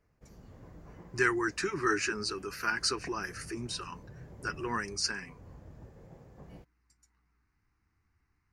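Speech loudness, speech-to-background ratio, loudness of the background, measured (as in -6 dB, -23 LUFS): -32.5 LUFS, 20.0 dB, -52.5 LUFS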